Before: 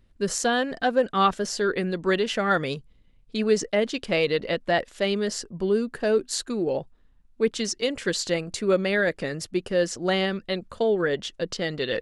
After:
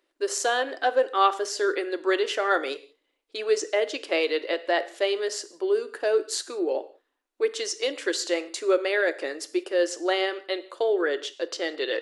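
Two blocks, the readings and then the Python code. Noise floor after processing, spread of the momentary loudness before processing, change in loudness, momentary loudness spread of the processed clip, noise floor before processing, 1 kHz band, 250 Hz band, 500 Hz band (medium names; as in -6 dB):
-76 dBFS, 7 LU, -1.0 dB, 7 LU, -57 dBFS, +0.5 dB, -5.5 dB, -0.5 dB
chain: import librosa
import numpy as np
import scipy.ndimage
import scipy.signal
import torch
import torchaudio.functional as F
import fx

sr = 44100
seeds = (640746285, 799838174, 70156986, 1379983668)

y = scipy.signal.sosfilt(scipy.signal.ellip(4, 1.0, 40, 310.0, 'highpass', fs=sr, output='sos'), x)
y = fx.rev_gated(y, sr, seeds[0], gate_ms=210, shape='falling', drr_db=11.5)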